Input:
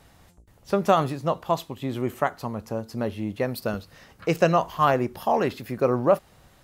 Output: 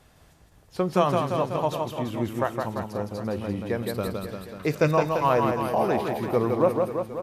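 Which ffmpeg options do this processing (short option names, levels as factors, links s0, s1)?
-af "aecho=1:1:150|315|496.5|696.2|915.8:0.631|0.398|0.251|0.158|0.1,asetrate=40517,aresample=44100,volume=0.75"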